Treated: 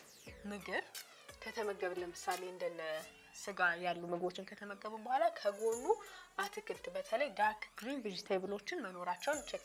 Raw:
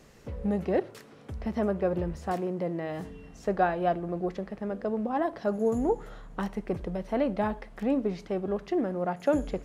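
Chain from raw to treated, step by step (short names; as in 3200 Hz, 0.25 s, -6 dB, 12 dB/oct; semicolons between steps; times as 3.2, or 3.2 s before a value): LPF 3600 Hz 6 dB/oct; differentiator; phaser 0.24 Hz, delay 2.8 ms, feedback 66%; gain +10 dB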